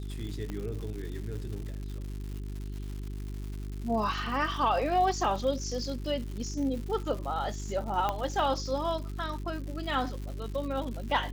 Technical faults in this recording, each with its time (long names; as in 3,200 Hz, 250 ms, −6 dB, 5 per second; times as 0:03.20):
surface crackle 220 per second −38 dBFS
mains hum 50 Hz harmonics 8 −37 dBFS
0:00.50: click −24 dBFS
0:08.09: click −16 dBFS